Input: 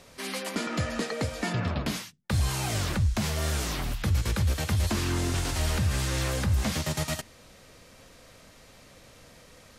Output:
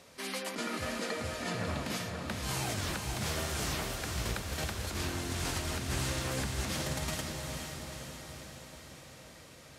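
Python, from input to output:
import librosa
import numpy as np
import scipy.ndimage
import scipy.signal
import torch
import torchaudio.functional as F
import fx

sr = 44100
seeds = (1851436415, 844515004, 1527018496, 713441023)

y = fx.highpass(x, sr, hz=120.0, slope=6)
y = fx.over_compress(y, sr, threshold_db=-31.0, ratio=-0.5)
y = fx.echo_diffused(y, sr, ms=486, feedback_pct=60, wet_db=-4.0)
y = F.gain(torch.from_numpy(y), -5.0).numpy()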